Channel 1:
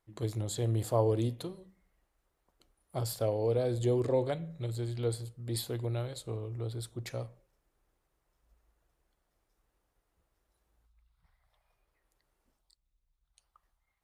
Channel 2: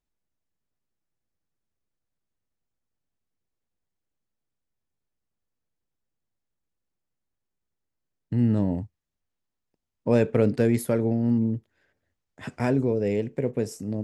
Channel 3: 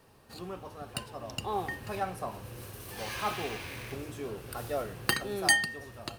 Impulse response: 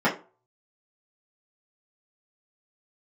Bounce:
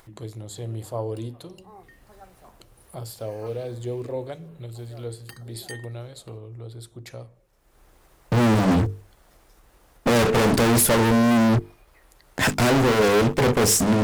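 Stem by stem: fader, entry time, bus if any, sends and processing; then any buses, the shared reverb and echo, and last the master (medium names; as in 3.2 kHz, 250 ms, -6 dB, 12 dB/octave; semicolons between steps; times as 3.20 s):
-1.5 dB, 0.00 s, no send, upward compressor, threshold -33 dBFS
-3.0 dB, 0.00 s, no send, treble shelf 3.5 kHz +7.5 dB; fuzz box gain 42 dB, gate -51 dBFS
-3.5 dB, 0.20 s, no send, step-sequenced notch 4.9 Hz 880–5800 Hz; auto duck -11 dB, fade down 1.15 s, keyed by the first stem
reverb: none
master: hum notches 50/100/150/200/250/300/350/400/450 Hz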